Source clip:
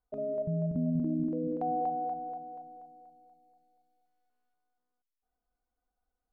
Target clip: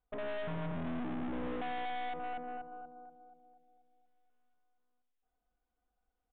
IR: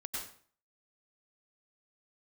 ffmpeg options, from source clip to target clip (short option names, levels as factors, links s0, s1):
-filter_complex "[0:a]asplit=2[s0][s1];[s1]adelay=101,lowpass=f=830:p=1,volume=0.398,asplit=2[s2][s3];[s3]adelay=101,lowpass=f=830:p=1,volume=0.4,asplit=2[s4][s5];[s5]adelay=101,lowpass=f=830:p=1,volume=0.4,asplit=2[s6][s7];[s7]adelay=101,lowpass=f=830:p=1,volume=0.4,asplit=2[s8][s9];[s9]adelay=101,lowpass=f=830:p=1,volume=0.4[s10];[s0][s2][s4][s6][s8][s10]amix=inputs=6:normalize=0,aeval=exprs='(tanh(141*val(0)+0.75)-tanh(0.75))/141':c=same,asplit=2[s11][s12];[1:a]atrim=start_sample=2205[s13];[s12][s13]afir=irnorm=-1:irlink=0,volume=0.0891[s14];[s11][s14]amix=inputs=2:normalize=0,aresample=8000,aresample=44100,volume=1.78"